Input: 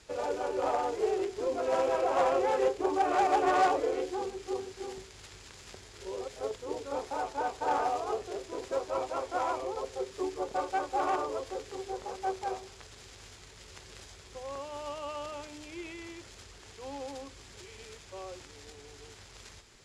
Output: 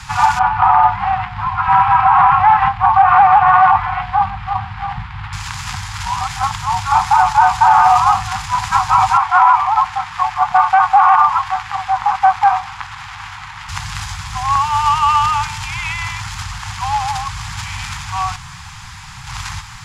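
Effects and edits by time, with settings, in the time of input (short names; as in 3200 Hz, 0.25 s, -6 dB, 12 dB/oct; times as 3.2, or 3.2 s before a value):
0.39–5.33 air absorption 450 m
9.17–13.69 tone controls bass -12 dB, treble -14 dB
18.36–19.27 room tone
whole clip: FFT band-reject 230–730 Hz; graphic EQ 125/250/500/1000/4000/8000 Hz +9/-9/-11/+9/-3/-4 dB; maximiser +25.5 dB; gain -1 dB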